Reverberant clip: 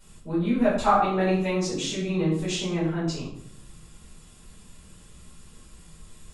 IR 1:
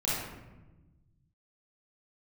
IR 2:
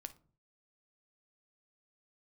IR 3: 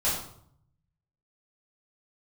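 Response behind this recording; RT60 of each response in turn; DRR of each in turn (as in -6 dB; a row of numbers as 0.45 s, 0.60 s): 3; 1.1 s, 0.45 s, 0.65 s; -8.5 dB, 10.0 dB, -10.0 dB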